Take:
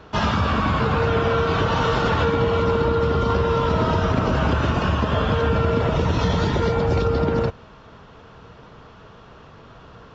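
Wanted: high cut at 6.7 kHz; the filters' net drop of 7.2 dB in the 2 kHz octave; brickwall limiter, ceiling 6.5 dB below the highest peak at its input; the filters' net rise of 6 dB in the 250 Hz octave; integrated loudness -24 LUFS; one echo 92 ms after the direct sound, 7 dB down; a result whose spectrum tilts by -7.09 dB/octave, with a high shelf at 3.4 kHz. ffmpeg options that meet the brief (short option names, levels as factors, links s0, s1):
-af "lowpass=6700,equalizer=f=250:t=o:g=8,equalizer=f=2000:t=o:g=-9,highshelf=f=3400:g=-7,alimiter=limit=0.282:level=0:latency=1,aecho=1:1:92:0.447,volume=0.668"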